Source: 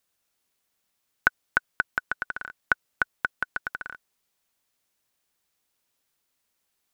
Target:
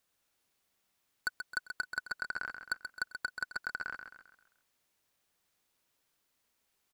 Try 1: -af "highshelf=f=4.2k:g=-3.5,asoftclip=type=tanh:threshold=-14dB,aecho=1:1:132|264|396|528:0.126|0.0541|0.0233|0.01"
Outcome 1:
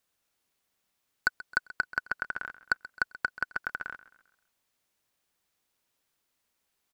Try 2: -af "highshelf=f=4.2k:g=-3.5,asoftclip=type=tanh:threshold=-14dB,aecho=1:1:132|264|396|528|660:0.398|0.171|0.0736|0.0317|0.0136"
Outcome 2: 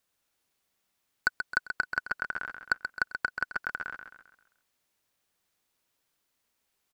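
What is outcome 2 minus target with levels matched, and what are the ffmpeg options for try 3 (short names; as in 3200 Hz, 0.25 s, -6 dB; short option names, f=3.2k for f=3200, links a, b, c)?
soft clip: distortion -8 dB
-af "highshelf=f=4.2k:g=-3.5,asoftclip=type=tanh:threshold=-25.5dB,aecho=1:1:132|264|396|528|660:0.398|0.171|0.0736|0.0317|0.0136"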